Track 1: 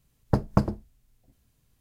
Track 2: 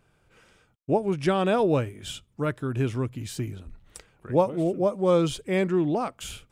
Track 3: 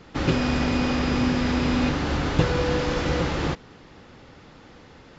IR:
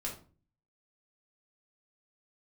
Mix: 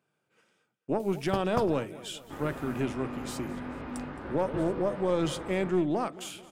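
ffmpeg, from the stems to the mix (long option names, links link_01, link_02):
-filter_complex "[0:a]tiltshelf=frequency=970:gain=-6.5,acompressor=mode=upward:threshold=-37dB:ratio=2.5,adelay=1000,volume=-7dB[link_01];[1:a]agate=range=-8dB:threshold=-55dB:ratio=16:detection=peak,highpass=frequency=150:width=0.5412,highpass=frequency=150:width=1.3066,volume=-1.5dB,asplit=3[link_02][link_03][link_04];[link_03]volume=-20.5dB[link_05];[link_04]volume=-21.5dB[link_06];[2:a]lowshelf=frequency=320:gain=-8.5,flanger=delay=18:depth=3.3:speed=2.4,lowpass=1500,adelay=2150,volume=-7.5dB,asplit=2[link_07][link_08];[link_08]volume=-11.5dB[link_09];[link_02][link_07]amix=inputs=2:normalize=0,aeval=exprs='(tanh(5.01*val(0)+0.5)-tanh(0.5))/5.01':channel_layout=same,alimiter=limit=-18.5dB:level=0:latency=1,volume=0dB[link_10];[3:a]atrim=start_sample=2205[link_11];[link_05][link_09]amix=inputs=2:normalize=0[link_12];[link_12][link_11]afir=irnorm=-1:irlink=0[link_13];[link_06]aecho=0:1:218|436|654|872|1090|1308|1526|1744:1|0.54|0.292|0.157|0.085|0.0459|0.0248|0.0134[link_14];[link_01][link_10][link_13][link_14]amix=inputs=4:normalize=0"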